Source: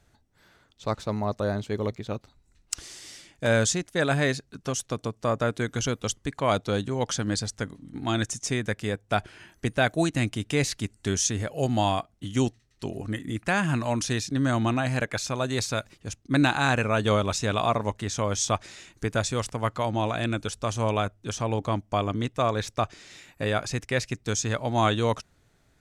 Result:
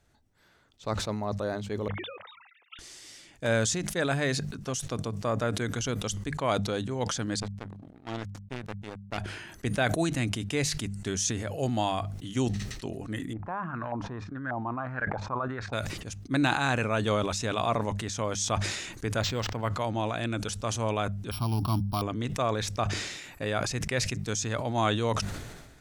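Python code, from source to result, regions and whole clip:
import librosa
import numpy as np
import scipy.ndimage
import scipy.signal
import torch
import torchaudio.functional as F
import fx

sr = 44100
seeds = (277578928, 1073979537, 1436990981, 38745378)

y = fx.chain(x, sr, fx.sine_speech(),
    fx.highpass(hz=1500.0, slope=6),
    fx.over_compress(threshold_db=-42.0, ratio=-1.0), at=(1.88, 2.79))
y = fx.chain(y, sr, fx.dead_time(dead_ms=0.28),
    fx.lowpass(hz=3600.0, slope=6),
    fx.power_curve(exponent=2.0), at=(7.4, 9.18))
y = fx.chain(y, sr, fx.level_steps(step_db=11),
    fx.filter_lfo_lowpass(shape='saw_up', hz=1.7, low_hz=770.0, high_hz=1700.0, q=5.3), at=(13.33, 15.73))
y = fx.chain(y, sr, fx.notch(hz=1200.0, q=14.0),
    fx.resample_linear(factor=4), at=(19.21, 19.7))
y = fx.chain(y, sr, fx.sample_sort(block=8),
    fx.low_shelf(hz=480.0, db=7.5),
    fx.fixed_phaser(hz=1900.0, stages=6), at=(21.31, 22.02))
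y = fx.hum_notches(y, sr, base_hz=50, count=4)
y = fx.sustainer(y, sr, db_per_s=44.0)
y = y * 10.0 ** (-4.0 / 20.0)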